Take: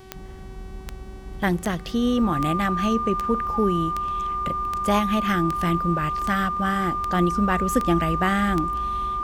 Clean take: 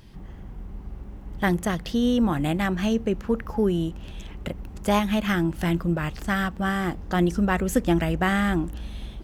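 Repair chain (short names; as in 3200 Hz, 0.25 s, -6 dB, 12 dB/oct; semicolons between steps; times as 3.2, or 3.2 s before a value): de-click; de-hum 378.8 Hz, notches 34; notch 1200 Hz, Q 30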